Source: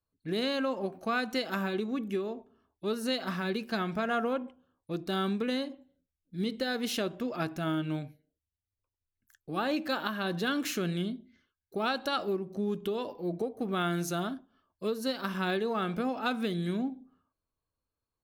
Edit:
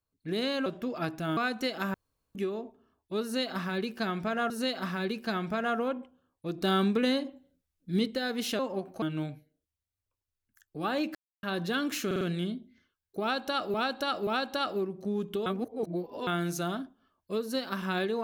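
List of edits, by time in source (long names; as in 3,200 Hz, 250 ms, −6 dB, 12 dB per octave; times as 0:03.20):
0:00.66–0:01.09: swap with 0:07.04–0:07.75
0:01.66–0:02.07: fill with room tone
0:02.95–0:04.22: repeat, 2 plays
0:05.03–0:06.52: clip gain +4.5 dB
0:09.88–0:10.16: silence
0:10.79: stutter 0.05 s, 4 plays
0:11.79–0:12.32: repeat, 3 plays
0:12.98–0:13.79: reverse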